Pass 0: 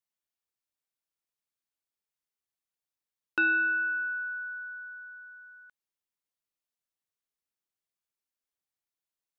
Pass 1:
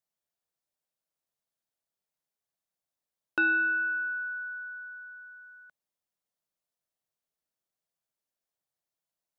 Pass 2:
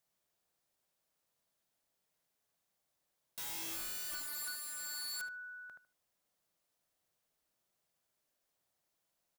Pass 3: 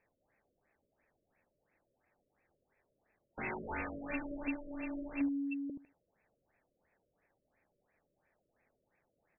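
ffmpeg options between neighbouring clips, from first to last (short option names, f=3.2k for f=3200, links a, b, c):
-af "equalizer=f=160:t=o:w=0.67:g=6,equalizer=f=630:t=o:w=0.67:g=8,equalizer=f=2.5k:t=o:w=0.67:g=-3"
-filter_complex "[0:a]alimiter=level_in=5dB:limit=-24dB:level=0:latency=1,volume=-5dB,aeval=exprs='(mod(158*val(0)+1,2)-1)/158':c=same,asplit=2[a][b];[b]adelay=76,lowpass=f=1.5k:p=1,volume=-4dB,asplit=2[c][d];[d]adelay=76,lowpass=f=1.5k:p=1,volume=0.24,asplit=2[e][f];[f]adelay=76,lowpass=f=1.5k:p=1,volume=0.24[g];[a][c][e][g]amix=inputs=4:normalize=0,volume=6.5dB"
-af "afftfilt=real='re*between(b*sr/4096,290,7900)':imag='im*between(b*sr/4096,290,7900)':win_size=4096:overlap=0.75,aeval=exprs='val(0)*sin(2*PI*1200*n/s)':c=same,afftfilt=real='re*lt(b*sr/1024,610*pow(2700/610,0.5+0.5*sin(2*PI*2.9*pts/sr)))':imag='im*lt(b*sr/1024,610*pow(2700/610,0.5+0.5*sin(2*PI*2.9*pts/sr)))':win_size=1024:overlap=0.75,volume=17dB"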